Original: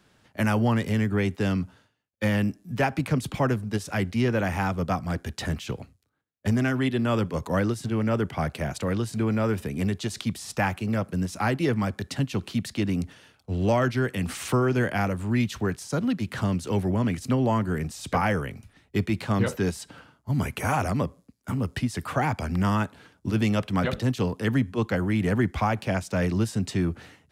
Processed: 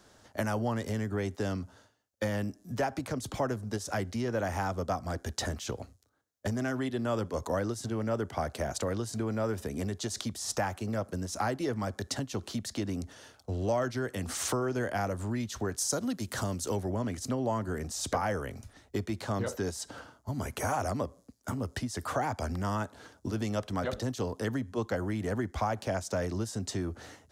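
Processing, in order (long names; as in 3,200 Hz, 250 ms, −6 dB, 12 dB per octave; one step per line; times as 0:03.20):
0:15.76–0:16.75: high-shelf EQ 4,900 Hz → 8,000 Hz +11.5 dB
downward compressor 2.5 to 1, threshold −35 dBFS, peak gain reduction 11.5 dB
graphic EQ with 15 bands 160 Hz −9 dB, 630 Hz +4 dB, 2,500 Hz −8 dB, 6,300 Hz +6 dB
level +3 dB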